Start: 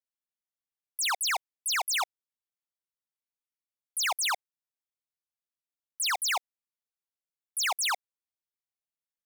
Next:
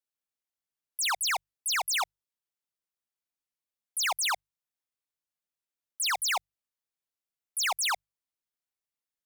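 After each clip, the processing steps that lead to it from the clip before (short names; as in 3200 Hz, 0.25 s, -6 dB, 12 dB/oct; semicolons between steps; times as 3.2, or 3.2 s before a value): notches 50/100/150 Hz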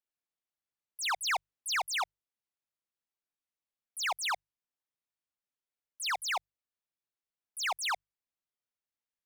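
vocal rider 0.5 s; high shelf 6000 Hz -10.5 dB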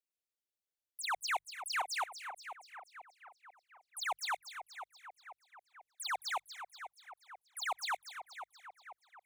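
envelope phaser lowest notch 190 Hz, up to 4900 Hz, full sweep at -30 dBFS; split-band echo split 2200 Hz, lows 0.489 s, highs 0.239 s, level -10 dB; gain -2.5 dB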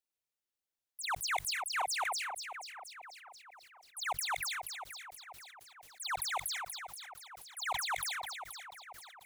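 sustainer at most 25 dB/s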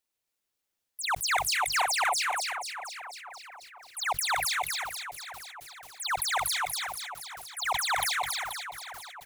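echo 0.276 s -3.5 dB; gain +6.5 dB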